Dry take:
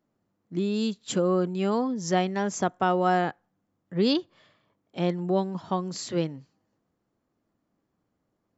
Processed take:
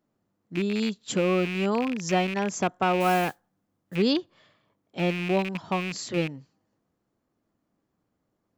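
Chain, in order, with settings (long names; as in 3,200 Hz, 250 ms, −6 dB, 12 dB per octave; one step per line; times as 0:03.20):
loose part that buzzes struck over −33 dBFS, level −23 dBFS
0:03.00–0:03.96: noise that follows the level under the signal 19 dB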